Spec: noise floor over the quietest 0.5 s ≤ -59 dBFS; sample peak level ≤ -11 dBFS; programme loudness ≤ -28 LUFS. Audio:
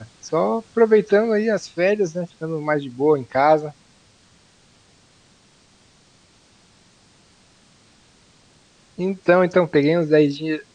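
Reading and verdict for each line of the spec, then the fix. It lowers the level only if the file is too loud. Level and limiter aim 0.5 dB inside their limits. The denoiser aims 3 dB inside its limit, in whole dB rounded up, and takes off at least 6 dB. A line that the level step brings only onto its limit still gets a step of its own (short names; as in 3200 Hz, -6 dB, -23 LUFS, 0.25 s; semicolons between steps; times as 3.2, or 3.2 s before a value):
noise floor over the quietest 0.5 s -55 dBFS: fail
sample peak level -4.5 dBFS: fail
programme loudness -19.5 LUFS: fail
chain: gain -9 dB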